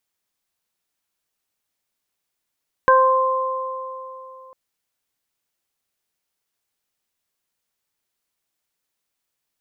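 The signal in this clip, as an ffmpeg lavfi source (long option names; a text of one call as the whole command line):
ffmpeg -f lavfi -i "aevalsrc='0.2*pow(10,-3*t/3.15)*sin(2*PI*522*t)+0.282*pow(10,-3*t/2.98)*sin(2*PI*1044*t)+0.168*pow(10,-3*t/0.41)*sin(2*PI*1566*t)':duration=1.65:sample_rate=44100" out.wav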